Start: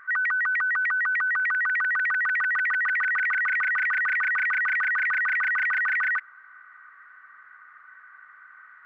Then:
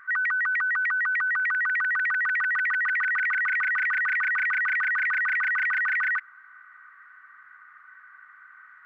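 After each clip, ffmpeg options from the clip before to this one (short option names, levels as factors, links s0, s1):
-af "equalizer=f=540:t=o:w=0.96:g=-8.5"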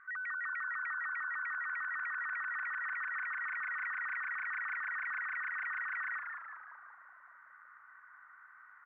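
-filter_complex "[0:a]lowpass=2100,alimiter=level_in=1.68:limit=0.0631:level=0:latency=1,volume=0.596,asplit=2[s0][s1];[s1]asplit=8[s2][s3][s4][s5][s6][s7][s8][s9];[s2]adelay=187,afreqshift=-78,volume=0.562[s10];[s3]adelay=374,afreqshift=-156,volume=0.32[s11];[s4]adelay=561,afreqshift=-234,volume=0.182[s12];[s5]adelay=748,afreqshift=-312,volume=0.105[s13];[s6]adelay=935,afreqshift=-390,volume=0.0596[s14];[s7]adelay=1122,afreqshift=-468,volume=0.0339[s15];[s8]adelay=1309,afreqshift=-546,volume=0.0193[s16];[s9]adelay=1496,afreqshift=-624,volume=0.011[s17];[s10][s11][s12][s13][s14][s15][s16][s17]amix=inputs=8:normalize=0[s18];[s0][s18]amix=inputs=2:normalize=0,volume=0.398"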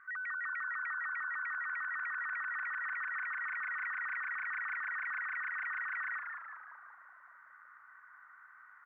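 -af "highpass=41"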